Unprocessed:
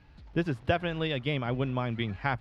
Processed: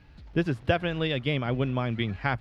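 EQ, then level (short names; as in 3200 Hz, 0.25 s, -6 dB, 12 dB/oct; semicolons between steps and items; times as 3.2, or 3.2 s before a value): bell 920 Hz -3 dB; +3.0 dB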